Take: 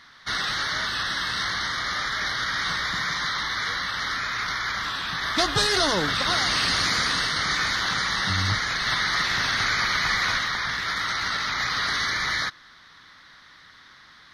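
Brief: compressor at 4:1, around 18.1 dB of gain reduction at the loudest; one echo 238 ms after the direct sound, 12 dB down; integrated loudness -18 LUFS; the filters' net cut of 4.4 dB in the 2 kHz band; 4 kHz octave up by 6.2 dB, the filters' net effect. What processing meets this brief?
peaking EQ 2 kHz -7 dB; peaking EQ 4 kHz +8.5 dB; compression 4:1, threshold -37 dBFS; delay 238 ms -12 dB; trim +16 dB

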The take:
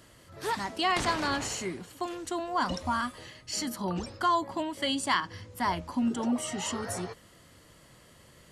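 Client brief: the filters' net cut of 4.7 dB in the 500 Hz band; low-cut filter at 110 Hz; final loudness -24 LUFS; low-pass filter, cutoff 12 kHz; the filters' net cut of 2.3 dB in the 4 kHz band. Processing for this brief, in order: high-pass 110 Hz; low-pass 12 kHz; peaking EQ 500 Hz -7 dB; peaking EQ 4 kHz -3 dB; trim +9 dB

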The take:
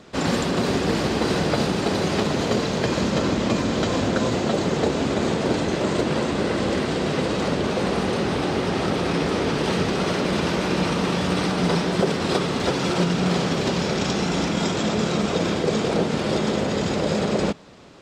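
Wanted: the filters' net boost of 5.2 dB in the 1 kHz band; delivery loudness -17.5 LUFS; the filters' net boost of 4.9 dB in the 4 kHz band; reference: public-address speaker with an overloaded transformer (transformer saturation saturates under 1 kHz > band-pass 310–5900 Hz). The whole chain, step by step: peaking EQ 1 kHz +6.5 dB; peaking EQ 4 kHz +6.5 dB; transformer saturation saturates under 1 kHz; band-pass 310–5900 Hz; trim +6.5 dB

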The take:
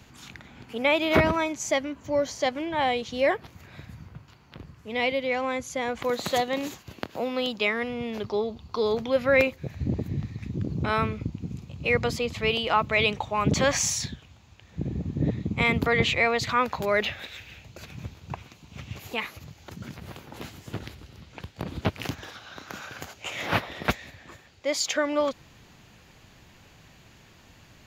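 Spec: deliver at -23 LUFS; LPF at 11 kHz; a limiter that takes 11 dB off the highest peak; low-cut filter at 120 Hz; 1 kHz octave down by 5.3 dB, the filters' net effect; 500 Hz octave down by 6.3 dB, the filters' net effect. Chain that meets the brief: high-pass 120 Hz; low-pass 11 kHz; peaking EQ 500 Hz -6 dB; peaking EQ 1 kHz -5 dB; trim +10.5 dB; peak limiter -11 dBFS

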